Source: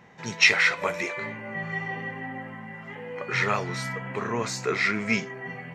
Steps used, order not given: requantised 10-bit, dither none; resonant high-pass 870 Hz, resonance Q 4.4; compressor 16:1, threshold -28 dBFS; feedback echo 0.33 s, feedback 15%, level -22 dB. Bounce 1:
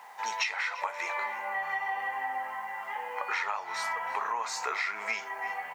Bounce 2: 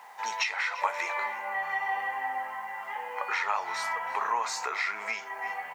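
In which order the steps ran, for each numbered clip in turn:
feedback echo > requantised > resonant high-pass > compressor; feedback echo > requantised > compressor > resonant high-pass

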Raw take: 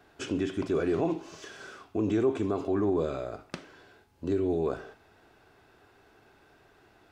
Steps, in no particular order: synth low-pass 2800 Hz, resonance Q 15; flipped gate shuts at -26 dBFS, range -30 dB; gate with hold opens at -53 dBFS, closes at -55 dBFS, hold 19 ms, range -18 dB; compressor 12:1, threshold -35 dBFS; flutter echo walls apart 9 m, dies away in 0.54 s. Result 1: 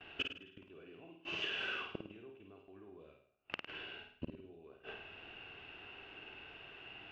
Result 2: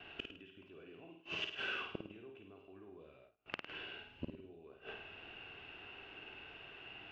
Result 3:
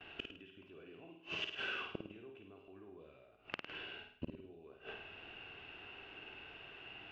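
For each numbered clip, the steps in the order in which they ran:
flipped gate > gate with hold > synth low-pass > compressor > flutter echo; synth low-pass > flipped gate > compressor > flutter echo > gate with hold; gate with hold > synth low-pass > flipped gate > flutter echo > compressor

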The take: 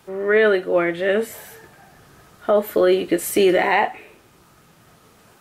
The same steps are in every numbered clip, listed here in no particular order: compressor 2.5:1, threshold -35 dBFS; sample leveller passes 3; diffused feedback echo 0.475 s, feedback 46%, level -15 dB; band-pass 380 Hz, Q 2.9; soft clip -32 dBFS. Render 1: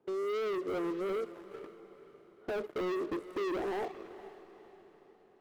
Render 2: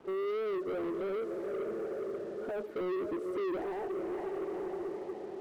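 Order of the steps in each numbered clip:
band-pass > sample leveller > compressor > soft clip > diffused feedback echo; diffused feedback echo > compressor > soft clip > band-pass > sample leveller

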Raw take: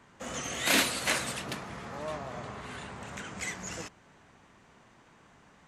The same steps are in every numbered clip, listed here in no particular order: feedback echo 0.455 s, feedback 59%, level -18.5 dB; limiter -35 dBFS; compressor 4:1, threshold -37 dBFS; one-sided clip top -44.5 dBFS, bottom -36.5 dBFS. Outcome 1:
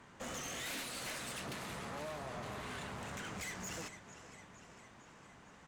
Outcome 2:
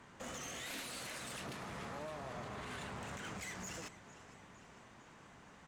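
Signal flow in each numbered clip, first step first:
feedback echo > compressor > one-sided clip > limiter; compressor > limiter > feedback echo > one-sided clip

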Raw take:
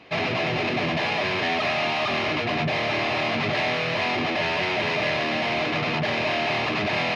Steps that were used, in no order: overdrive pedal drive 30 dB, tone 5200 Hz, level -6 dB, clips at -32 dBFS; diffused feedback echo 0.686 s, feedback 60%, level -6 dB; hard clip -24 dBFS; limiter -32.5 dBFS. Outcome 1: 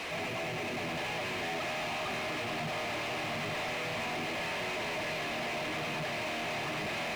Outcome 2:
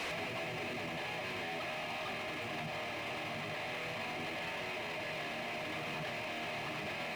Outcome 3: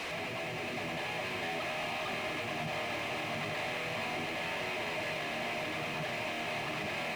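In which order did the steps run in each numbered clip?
diffused feedback echo > hard clip > overdrive pedal > limiter; overdrive pedal > diffused feedback echo > limiter > hard clip; overdrive pedal > hard clip > limiter > diffused feedback echo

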